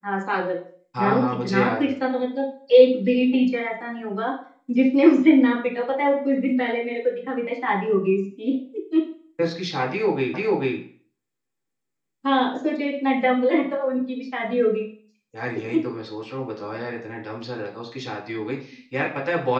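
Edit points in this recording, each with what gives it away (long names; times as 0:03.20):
0:10.34: the same again, the last 0.44 s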